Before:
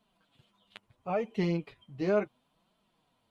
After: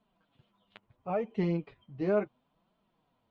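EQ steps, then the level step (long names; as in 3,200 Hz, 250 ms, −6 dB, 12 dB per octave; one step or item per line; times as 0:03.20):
high-frequency loss of the air 71 metres
high-shelf EQ 2,800 Hz −9.5 dB
0.0 dB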